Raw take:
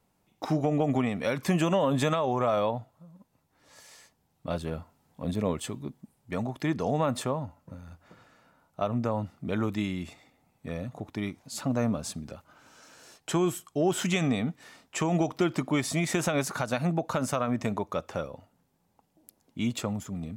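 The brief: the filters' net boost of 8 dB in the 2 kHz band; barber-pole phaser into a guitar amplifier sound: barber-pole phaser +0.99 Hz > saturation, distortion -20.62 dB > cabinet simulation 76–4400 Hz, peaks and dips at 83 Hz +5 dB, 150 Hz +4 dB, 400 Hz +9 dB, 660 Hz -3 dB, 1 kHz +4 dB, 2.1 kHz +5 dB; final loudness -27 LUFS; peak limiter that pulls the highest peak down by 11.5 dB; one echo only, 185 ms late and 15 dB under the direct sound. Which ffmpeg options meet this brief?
-filter_complex "[0:a]equalizer=f=2000:t=o:g=6.5,alimiter=limit=0.075:level=0:latency=1,aecho=1:1:185:0.178,asplit=2[s0][s1];[s1]afreqshift=0.99[s2];[s0][s2]amix=inputs=2:normalize=1,asoftclip=threshold=0.0473,highpass=76,equalizer=f=83:t=q:w=4:g=5,equalizer=f=150:t=q:w=4:g=4,equalizer=f=400:t=q:w=4:g=9,equalizer=f=660:t=q:w=4:g=-3,equalizer=f=1000:t=q:w=4:g=4,equalizer=f=2100:t=q:w=4:g=5,lowpass=f=4400:w=0.5412,lowpass=f=4400:w=1.3066,volume=2.82"

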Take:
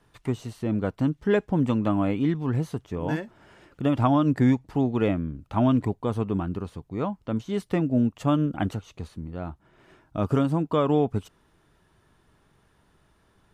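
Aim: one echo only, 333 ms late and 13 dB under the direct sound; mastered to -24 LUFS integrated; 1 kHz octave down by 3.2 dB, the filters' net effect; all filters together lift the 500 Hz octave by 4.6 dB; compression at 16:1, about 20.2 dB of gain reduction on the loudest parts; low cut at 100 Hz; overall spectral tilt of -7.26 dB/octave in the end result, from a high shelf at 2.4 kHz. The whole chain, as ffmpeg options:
-af "highpass=100,equalizer=f=500:t=o:g=7.5,equalizer=f=1000:t=o:g=-8.5,highshelf=f=2400:g=5,acompressor=threshold=0.02:ratio=16,aecho=1:1:333:0.224,volume=6.31"

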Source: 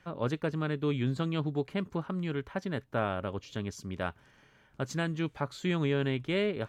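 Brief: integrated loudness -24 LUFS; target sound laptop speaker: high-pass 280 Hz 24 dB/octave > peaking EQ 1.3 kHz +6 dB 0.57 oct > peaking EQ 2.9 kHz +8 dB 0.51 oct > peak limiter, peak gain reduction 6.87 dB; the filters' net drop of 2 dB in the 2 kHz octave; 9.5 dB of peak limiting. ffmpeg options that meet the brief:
-af "equalizer=f=2000:t=o:g=-8.5,alimiter=level_in=1.68:limit=0.0631:level=0:latency=1,volume=0.596,highpass=f=280:w=0.5412,highpass=f=280:w=1.3066,equalizer=f=1300:t=o:w=0.57:g=6,equalizer=f=2900:t=o:w=0.51:g=8,volume=8.91,alimiter=limit=0.237:level=0:latency=1"

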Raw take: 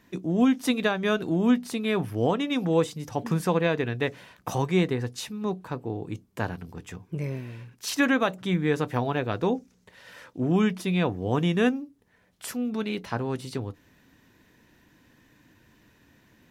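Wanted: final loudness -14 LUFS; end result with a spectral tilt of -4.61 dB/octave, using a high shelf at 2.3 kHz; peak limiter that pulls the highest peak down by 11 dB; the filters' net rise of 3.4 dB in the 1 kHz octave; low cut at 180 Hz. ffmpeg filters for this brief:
-af "highpass=180,equalizer=f=1000:t=o:g=3.5,highshelf=f=2300:g=4.5,volume=6.68,alimiter=limit=0.841:level=0:latency=1"

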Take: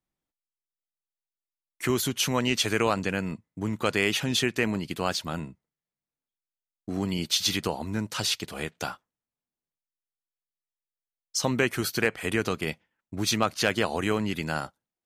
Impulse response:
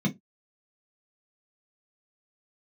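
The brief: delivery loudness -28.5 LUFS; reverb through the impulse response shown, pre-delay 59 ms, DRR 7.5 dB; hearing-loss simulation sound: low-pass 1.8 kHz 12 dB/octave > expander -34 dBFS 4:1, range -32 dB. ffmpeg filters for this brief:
-filter_complex "[0:a]asplit=2[s0][s1];[1:a]atrim=start_sample=2205,adelay=59[s2];[s1][s2]afir=irnorm=-1:irlink=0,volume=0.2[s3];[s0][s3]amix=inputs=2:normalize=0,lowpass=1800,agate=range=0.0251:threshold=0.02:ratio=4,volume=0.447"

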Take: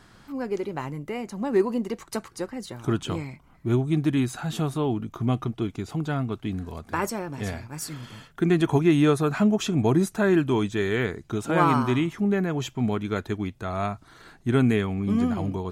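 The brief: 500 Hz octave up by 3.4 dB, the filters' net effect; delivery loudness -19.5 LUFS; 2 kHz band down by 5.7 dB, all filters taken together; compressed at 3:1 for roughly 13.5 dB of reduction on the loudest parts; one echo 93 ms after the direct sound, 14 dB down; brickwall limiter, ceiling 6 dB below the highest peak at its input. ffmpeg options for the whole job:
-af "equalizer=f=500:t=o:g=5,equalizer=f=2000:t=o:g=-8,acompressor=threshold=0.0224:ratio=3,alimiter=level_in=1.19:limit=0.0631:level=0:latency=1,volume=0.841,aecho=1:1:93:0.2,volume=6.31"

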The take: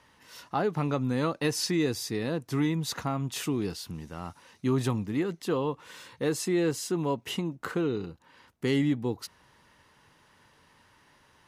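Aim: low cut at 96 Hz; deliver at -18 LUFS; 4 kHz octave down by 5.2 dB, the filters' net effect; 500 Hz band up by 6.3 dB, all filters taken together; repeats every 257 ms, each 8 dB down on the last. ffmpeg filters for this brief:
-af "highpass=96,equalizer=f=500:t=o:g=8,equalizer=f=4000:t=o:g=-7,aecho=1:1:257|514|771|1028|1285:0.398|0.159|0.0637|0.0255|0.0102,volume=2.66"

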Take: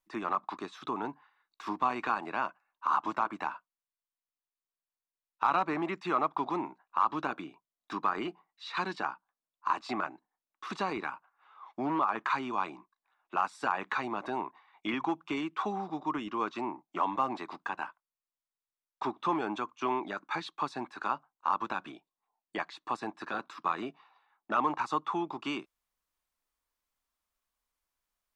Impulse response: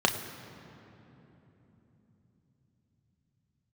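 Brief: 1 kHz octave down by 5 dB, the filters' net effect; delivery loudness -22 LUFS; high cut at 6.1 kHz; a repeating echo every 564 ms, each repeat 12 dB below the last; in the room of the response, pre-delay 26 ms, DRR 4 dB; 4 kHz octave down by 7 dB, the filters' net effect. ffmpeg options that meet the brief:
-filter_complex "[0:a]lowpass=6100,equalizer=f=1000:t=o:g=-5.5,equalizer=f=4000:t=o:g=-8.5,aecho=1:1:564|1128|1692:0.251|0.0628|0.0157,asplit=2[s0][s1];[1:a]atrim=start_sample=2205,adelay=26[s2];[s1][s2]afir=irnorm=-1:irlink=0,volume=0.141[s3];[s0][s3]amix=inputs=2:normalize=0,volume=5.01"

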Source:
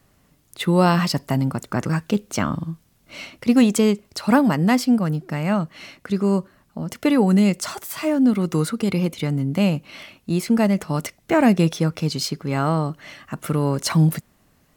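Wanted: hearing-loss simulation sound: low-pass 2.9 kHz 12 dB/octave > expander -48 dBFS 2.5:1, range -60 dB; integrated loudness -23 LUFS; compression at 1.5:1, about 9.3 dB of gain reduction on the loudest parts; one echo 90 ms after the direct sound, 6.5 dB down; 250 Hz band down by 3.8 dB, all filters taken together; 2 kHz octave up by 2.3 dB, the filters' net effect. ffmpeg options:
-af "equalizer=f=250:t=o:g=-5,equalizer=f=2000:t=o:g=4,acompressor=threshold=0.01:ratio=1.5,lowpass=2900,aecho=1:1:90:0.473,agate=range=0.001:threshold=0.00398:ratio=2.5,volume=2.51"

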